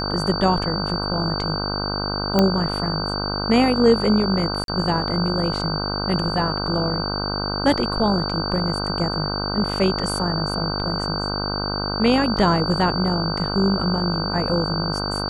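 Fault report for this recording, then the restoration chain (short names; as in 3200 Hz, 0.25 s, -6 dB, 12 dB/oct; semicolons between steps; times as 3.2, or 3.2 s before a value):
buzz 50 Hz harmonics 31 -27 dBFS
tone 4600 Hz -27 dBFS
2.39 pop -4 dBFS
4.64–4.68 gap 42 ms
12.37 gap 2.6 ms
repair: de-click; de-hum 50 Hz, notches 31; notch 4600 Hz, Q 30; interpolate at 4.64, 42 ms; interpolate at 12.37, 2.6 ms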